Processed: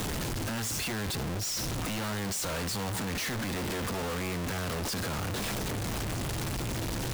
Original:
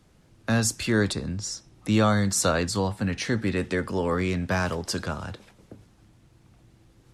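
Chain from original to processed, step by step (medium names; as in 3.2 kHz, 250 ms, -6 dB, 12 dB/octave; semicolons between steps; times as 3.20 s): one-bit comparator; trim -5.5 dB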